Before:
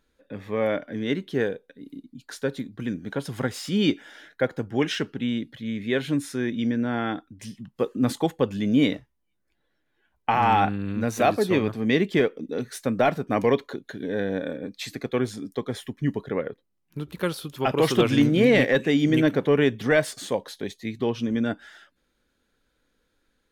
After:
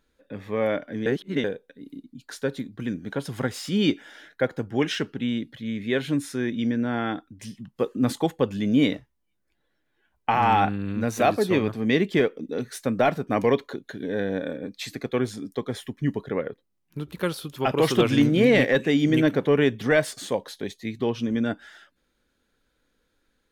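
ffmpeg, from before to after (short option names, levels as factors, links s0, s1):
-filter_complex "[0:a]asplit=3[s0][s1][s2];[s0]atrim=end=1.062[s3];[s1]atrim=start=1.058:end=1.442,asetpts=PTS-STARTPTS,areverse[s4];[s2]atrim=start=1.438[s5];[s3][s4]acrossfade=d=0.004:c1=hsin:c2=hsin[s6];[s6][s5]acrossfade=d=0.004:c1=hsin:c2=hsin"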